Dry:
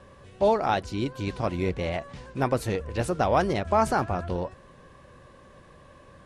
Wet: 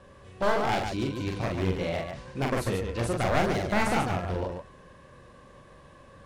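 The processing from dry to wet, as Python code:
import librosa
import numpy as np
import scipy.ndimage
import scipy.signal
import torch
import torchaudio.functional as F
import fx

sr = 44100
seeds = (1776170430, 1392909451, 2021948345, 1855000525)

p1 = np.minimum(x, 2.0 * 10.0 ** (-22.0 / 20.0) - x)
p2 = p1 + fx.echo_multitap(p1, sr, ms=(43, 143), db=(-3.5, -5.5), dry=0)
y = p2 * 10.0 ** (-2.5 / 20.0)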